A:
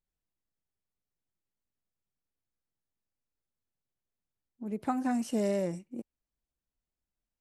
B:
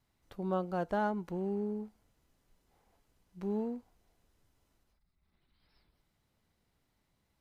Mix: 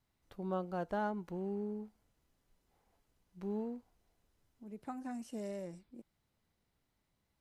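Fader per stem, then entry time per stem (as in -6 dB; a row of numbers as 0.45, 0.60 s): -12.5, -4.0 dB; 0.00, 0.00 s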